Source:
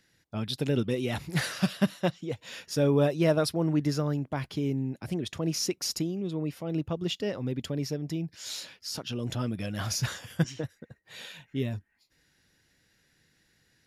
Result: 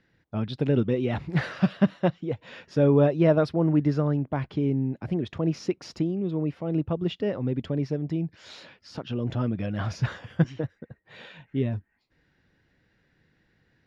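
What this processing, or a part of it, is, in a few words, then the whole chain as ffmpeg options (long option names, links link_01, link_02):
phone in a pocket: -af "lowpass=3600,highshelf=frequency=2400:gain=-11,volume=4.5dB"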